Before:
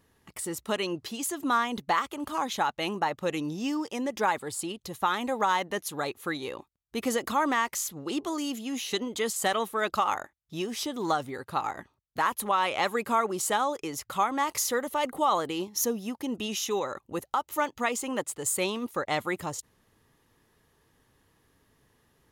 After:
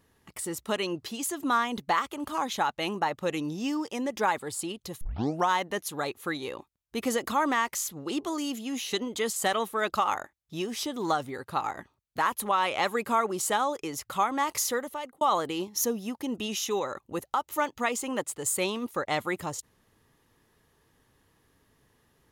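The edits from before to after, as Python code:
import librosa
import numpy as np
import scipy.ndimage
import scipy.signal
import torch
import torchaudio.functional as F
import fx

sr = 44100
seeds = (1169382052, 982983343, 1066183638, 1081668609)

y = fx.edit(x, sr, fx.tape_start(start_s=5.01, length_s=0.48),
    fx.fade_out_span(start_s=14.68, length_s=0.53), tone=tone)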